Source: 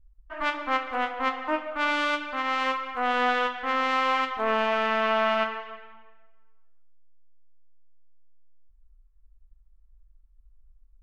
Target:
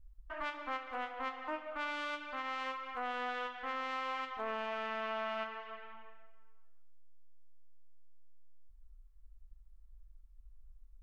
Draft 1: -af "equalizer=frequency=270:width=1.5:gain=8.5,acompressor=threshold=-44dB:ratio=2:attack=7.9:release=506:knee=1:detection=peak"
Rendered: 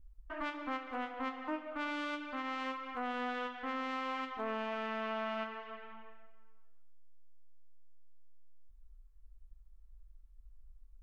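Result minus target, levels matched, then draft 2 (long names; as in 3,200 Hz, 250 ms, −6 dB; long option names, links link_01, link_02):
250 Hz band +8.5 dB
-af "equalizer=frequency=270:width=1.5:gain=-2.5,acompressor=threshold=-44dB:ratio=2:attack=7.9:release=506:knee=1:detection=peak"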